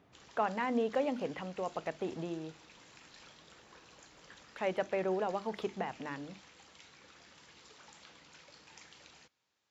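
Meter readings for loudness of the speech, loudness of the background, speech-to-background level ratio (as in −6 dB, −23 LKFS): −36.5 LKFS, −56.5 LKFS, 20.0 dB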